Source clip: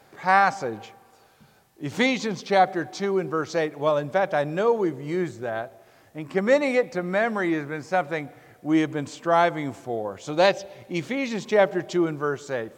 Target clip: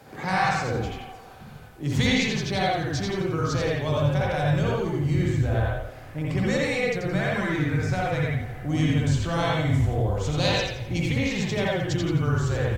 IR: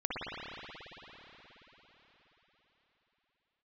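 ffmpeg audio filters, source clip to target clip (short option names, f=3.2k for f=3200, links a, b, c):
-filter_complex "[0:a]equalizer=f=140:w=0.8:g=8.5,acrossover=split=140|3000[a][b][c];[b]acompressor=threshold=-37dB:ratio=3[d];[a][d][c]amix=inputs=3:normalize=0,asubboost=boost=8.5:cutoff=74,asplit=6[e][f][g][h][i][j];[f]adelay=85,afreqshift=-39,volume=-5dB[k];[g]adelay=170,afreqshift=-78,volume=-13.4dB[l];[h]adelay=255,afreqshift=-117,volume=-21.8dB[m];[i]adelay=340,afreqshift=-156,volume=-30.2dB[n];[j]adelay=425,afreqshift=-195,volume=-38.6dB[o];[e][k][l][m][n][o]amix=inputs=6:normalize=0[p];[1:a]atrim=start_sample=2205,atrim=end_sample=6615[q];[p][q]afir=irnorm=-1:irlink=0,volume=4.5dB"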